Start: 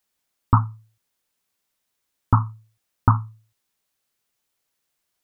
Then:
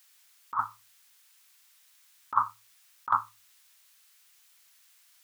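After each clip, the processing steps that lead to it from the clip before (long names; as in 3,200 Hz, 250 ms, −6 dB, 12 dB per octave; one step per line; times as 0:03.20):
high-pass filter 1,400 Hz 12 dB per octave
compressor whose output falls as the input rises −33 dBFS, ratio −0.5
level +9 dB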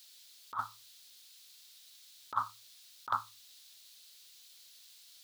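octave-band graphic EQ 125/250/500/1,000/2,000/4,000 Hz −4/−5/+6/−11/−5/+12 dB
bit-depth reduction 12 bits, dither none
level +1 dB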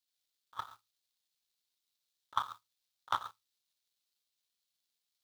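reverb whose tail is shaped and stops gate 170 ms flat, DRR 2 dB
power curve on the samples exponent 2
level +4 dB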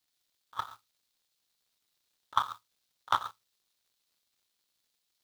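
surface crackle 120 per second −70 dBFS
level +5.5 dB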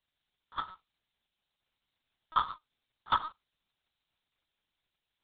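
linear-prediction vocoder at 8 kHz pitch kept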